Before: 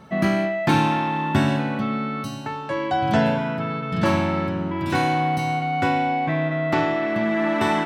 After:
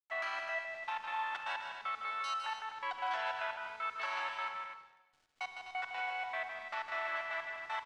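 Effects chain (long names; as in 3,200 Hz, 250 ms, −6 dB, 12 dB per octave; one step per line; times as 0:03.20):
high-pass filter 900 Hz 24 dB per octave
in parallel at +1 dB: compressor whose output falls as the input rises −33 dBFS, ratio −1
on the sum: brickwall limiter −20 dBFS, peak gain reduction 9.5 dB
0:04.68–0:05.41: tube saturation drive 50 dB, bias 0.45
gate pattern ".xxx.x...x" 154 BPM −24 dB
bit reduction 8 bits
high-frequency loss of the air 110 metres
loudspeakers that aren't time-aligned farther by 54 metres −6 dB, 87 metres −9 dB
on a send at −9.5 dB: convolution reverb RT60 1.1 s, pre-delay 32 ms
on the sum: level −8.5 dB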